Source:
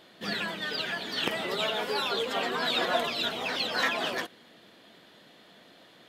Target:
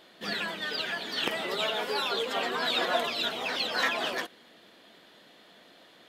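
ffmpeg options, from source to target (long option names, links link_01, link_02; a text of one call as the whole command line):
ffmpeg -i in.wav -af "equalizer=frequency=110:width_type=o:width=1.8:gain=-6.5" out.wav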